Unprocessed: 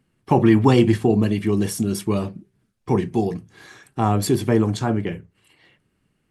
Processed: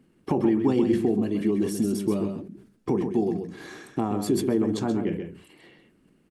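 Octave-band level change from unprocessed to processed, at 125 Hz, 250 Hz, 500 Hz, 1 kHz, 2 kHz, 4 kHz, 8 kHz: −11.0, −4.0, −4.5, −9.5, −10.0, −8.5, −7.0 decibels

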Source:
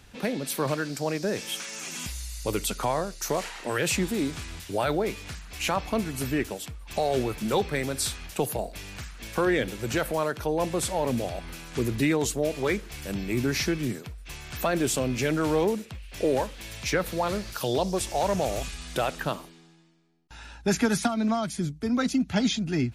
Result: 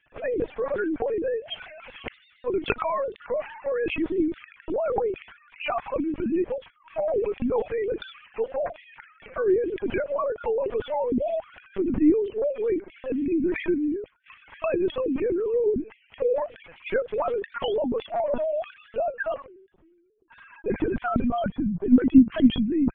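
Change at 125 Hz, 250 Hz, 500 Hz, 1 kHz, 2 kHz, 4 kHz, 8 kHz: −8.0 dB, +3.5 dB, +3.0 dB, −1.5 dB, −3.5 dB, −7.5 dB, below −40 dB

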